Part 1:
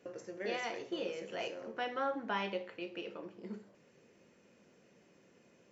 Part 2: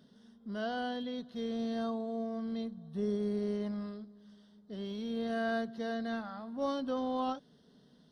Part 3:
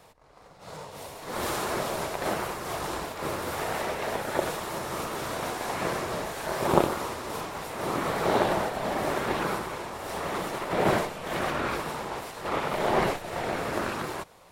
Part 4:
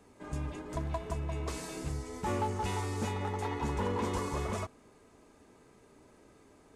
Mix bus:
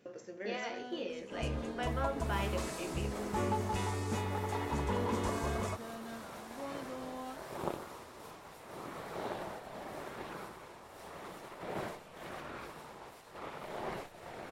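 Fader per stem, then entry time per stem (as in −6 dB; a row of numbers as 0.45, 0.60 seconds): −1.5, −10.5, −16.0, −1.5 decibels; 0.00, 0.00, 0.90, 1.10 seconds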